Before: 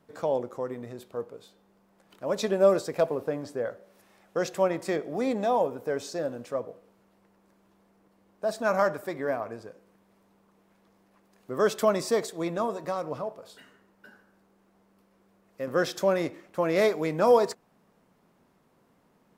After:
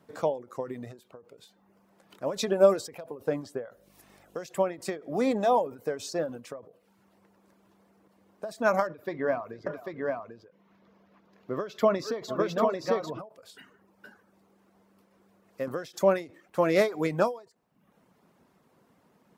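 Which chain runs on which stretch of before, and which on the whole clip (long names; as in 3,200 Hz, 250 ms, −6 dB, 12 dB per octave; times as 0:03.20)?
0:03.72–0:04.49: high-shelf EQ 7,100 Hz +7 dB + hum with harmonics 50 Hz, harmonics 14, −63 dBFS −2 dB per octave
0:08.87–0:13.19: moving average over 5 samples + notch filter 800 Hz, Q 11 + multi-tap delay 45/448/794 ms −16.5/−15.5/−3 dB
whole clip: high-pass filter 59 Hz; reverb reduction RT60 0.55 s; every ending faded ahead of time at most 160 dB per second; level +2.5 dB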